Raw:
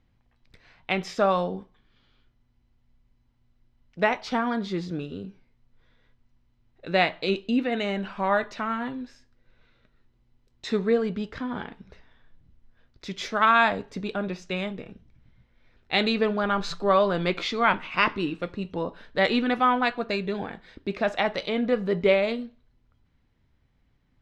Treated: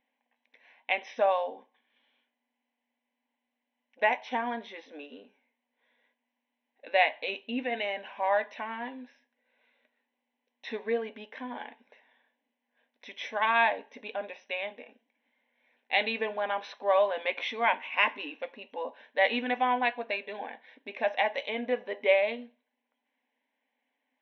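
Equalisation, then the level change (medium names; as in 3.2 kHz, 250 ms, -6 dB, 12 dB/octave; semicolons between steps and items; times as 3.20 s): brick-wall FIR band-pass 230–6100 Hz; band-stop 670 Hz, Q 14; static phaser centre 1.3 kHz, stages 6; 0.0 dB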